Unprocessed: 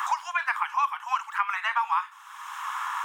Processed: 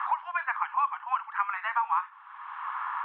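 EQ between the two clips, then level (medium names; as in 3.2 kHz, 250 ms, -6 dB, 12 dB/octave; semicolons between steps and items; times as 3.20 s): Gaussian low-pass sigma 3.9 samples; 0.0 dB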